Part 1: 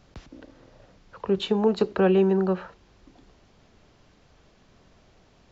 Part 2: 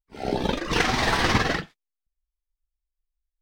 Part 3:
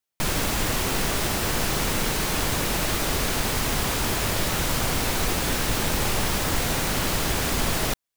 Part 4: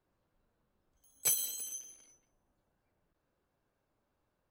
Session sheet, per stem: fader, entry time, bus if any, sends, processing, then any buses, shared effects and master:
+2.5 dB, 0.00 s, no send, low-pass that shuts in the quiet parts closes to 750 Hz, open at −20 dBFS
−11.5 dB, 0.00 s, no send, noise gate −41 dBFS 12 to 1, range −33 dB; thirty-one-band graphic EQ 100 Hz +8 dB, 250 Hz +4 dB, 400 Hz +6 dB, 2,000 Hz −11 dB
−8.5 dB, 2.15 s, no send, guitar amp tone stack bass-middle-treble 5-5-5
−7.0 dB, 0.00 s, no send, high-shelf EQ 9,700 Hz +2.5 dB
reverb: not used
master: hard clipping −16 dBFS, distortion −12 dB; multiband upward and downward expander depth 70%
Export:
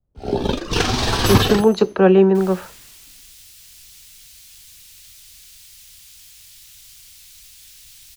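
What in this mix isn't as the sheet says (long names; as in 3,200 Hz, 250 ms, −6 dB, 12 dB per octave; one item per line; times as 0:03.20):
stem 2 −11.5 dB → 0.0 dB
master: missing hard clipping −16 dBFS, distortion −12 dB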